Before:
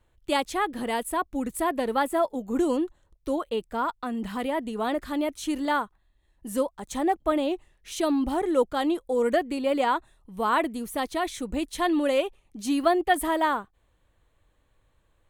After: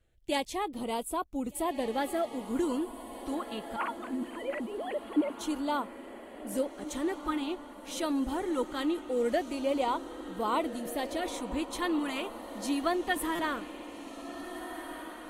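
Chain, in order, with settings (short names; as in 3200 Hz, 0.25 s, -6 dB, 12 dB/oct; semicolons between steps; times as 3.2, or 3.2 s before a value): 3.76–5.41 sine-wave speech; LFO notch sine 0.22 Hz 480–1800 Hz; diffused feedback echo 1.624 s, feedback 51%, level -11 dB; stuck buffer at 13.35, samples 256, times 6; gain -4.5 dB; AAC 48 kbps 48000 Hz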